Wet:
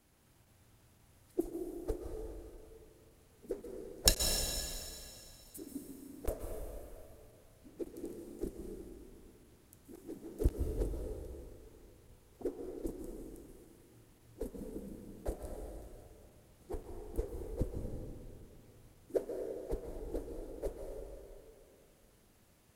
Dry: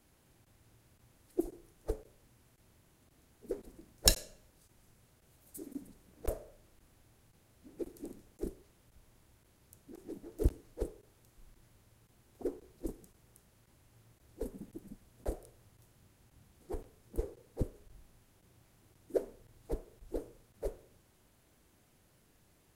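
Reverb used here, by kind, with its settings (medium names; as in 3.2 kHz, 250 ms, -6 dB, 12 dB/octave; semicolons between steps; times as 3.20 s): plate-style reverb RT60 2.7 s, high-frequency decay 0.95×, pre-delay 115 ms, DRR 1.5 dB; trim -1.5 dB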